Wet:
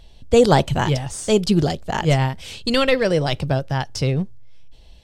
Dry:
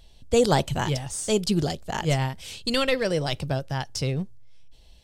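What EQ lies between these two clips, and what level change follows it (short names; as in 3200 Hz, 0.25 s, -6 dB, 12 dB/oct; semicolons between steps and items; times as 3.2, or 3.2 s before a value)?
high shelf 5100 Hz -8.5 dB; +6.5 dB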